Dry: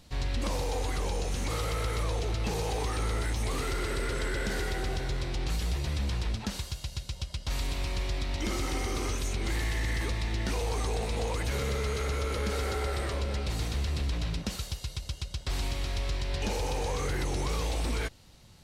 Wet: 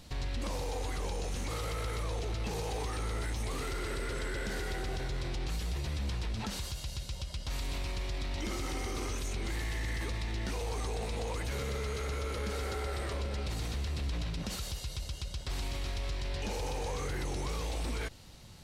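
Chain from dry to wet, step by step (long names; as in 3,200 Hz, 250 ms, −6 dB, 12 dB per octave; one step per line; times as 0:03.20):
brickwall limiter −31.5 dBFS, peak gain reduction 9 dB
level +3 dB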